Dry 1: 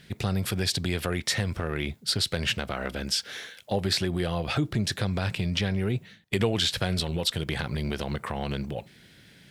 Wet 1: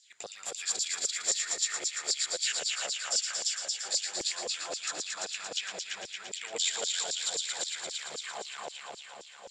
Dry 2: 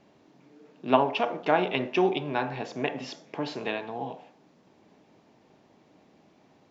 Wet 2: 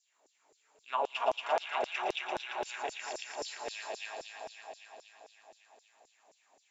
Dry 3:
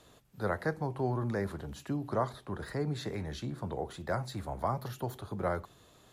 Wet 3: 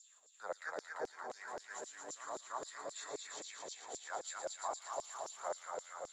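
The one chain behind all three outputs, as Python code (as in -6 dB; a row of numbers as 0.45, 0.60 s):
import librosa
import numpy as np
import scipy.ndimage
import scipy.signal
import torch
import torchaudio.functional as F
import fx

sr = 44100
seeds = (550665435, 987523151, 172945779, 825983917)

y = fx.ladder_lowpass(x, sr, hz=7400.0, resonance_pct=90)
y = fx.hum_notches(y, sr, base_hz=60, count=2)
y = fx.echo_heads(y, sr, ms=114, heads='all three', feedback_pct=69, wet_db=-6.0)
y = fx.filter_lfo_highpass(y, sr, shape='saw_down', hz=3.8, low_hz=460.0, high_hz=5800.0, q=2.8)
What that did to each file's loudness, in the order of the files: -3.0, -8.0, -9.0 LU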